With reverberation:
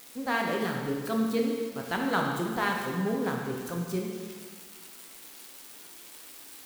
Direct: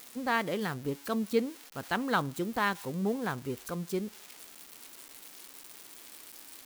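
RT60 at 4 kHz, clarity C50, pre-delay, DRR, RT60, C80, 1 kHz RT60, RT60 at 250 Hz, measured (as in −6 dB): 1.6 s, 2.0 dB, 5 ms, 0.0 dB, 1.7 s, 3.5 dB, 1.7 s, 1.7 s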